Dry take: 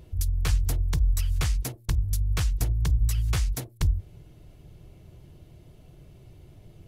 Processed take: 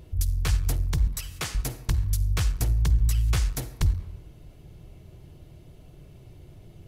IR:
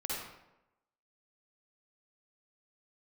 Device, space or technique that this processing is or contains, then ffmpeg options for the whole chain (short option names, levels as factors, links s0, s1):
saturated reverb return: -filter_complex "[0:a]asettb=1/sr,asplit=3[s0][s1][s2];[s0]atrim=end=1.074[s3];[s1]atrim=start=1.07:end=1.55,asetpts=PTS-STARTPTS,afade=t=in:d=0.004:c=qsin,afade=t=out:st=0.476:d=0.004:c=qsin,highpass=210[s4];[s2]atrim=start=1.546[s5];[s3][s4]acrossfade=d=0.004:c1=hsin:c2=qsin[s6];[s6][s5]acrossfade=d=0.004:c1=qsin:c2=hsin,asplit=2[s7][s8];[1:a]atrim=start_sample=2205[s9];[s8][s9]afir=irnorm=-1:irlink=0,asoftclip=type=tanh:threshold=0.126,volume=0.282[s10];[s7][s10]amix=inputs=2:normalize=0"